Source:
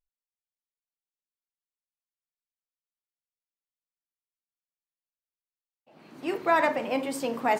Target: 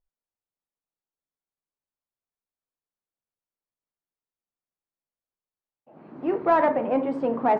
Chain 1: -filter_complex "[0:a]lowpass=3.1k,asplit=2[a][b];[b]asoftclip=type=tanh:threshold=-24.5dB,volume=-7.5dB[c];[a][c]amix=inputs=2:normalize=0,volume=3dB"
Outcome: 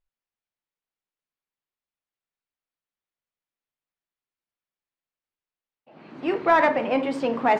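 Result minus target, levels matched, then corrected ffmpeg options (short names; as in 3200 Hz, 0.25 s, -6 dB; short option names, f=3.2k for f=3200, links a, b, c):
4000 Hz band +11.5 dB
-filter_complex "[0:a]lowpass=1.1k,asplit=2[a][b];[b]asoftclip=type=tanh:threshold=-24.5dB,volume=-7.5dB[c];[a][c]amix=inputs=2:normalize=0,volume=3dB"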